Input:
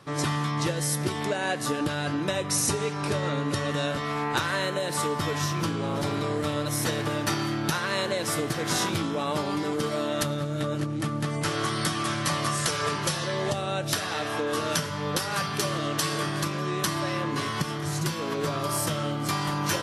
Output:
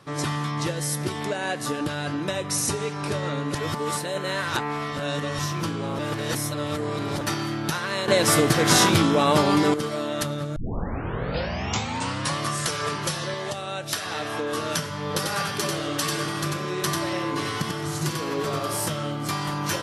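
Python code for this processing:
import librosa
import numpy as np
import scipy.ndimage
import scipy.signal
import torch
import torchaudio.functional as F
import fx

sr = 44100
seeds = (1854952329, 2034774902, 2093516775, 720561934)

y = fx.low_shelf(x, sr, hz=490.0, db=-7.0, at=(13.34, 14.06))
y = fx.echo_single(y, sr, ms=93, db=-3.0, at=(15.01, 18.88))
y = fx.edit(y, sr, fx.reverse_span(start_s=3.55, length_s=1.84),
    fx.reverse_span(start_s=5.99, length_s=1.22),
    fx.clip_gain(start_s=8.08, length_s=1.66, db=9.0),
    fx.tape_start(start_s=10.56, length_s=1.82), tone=tone)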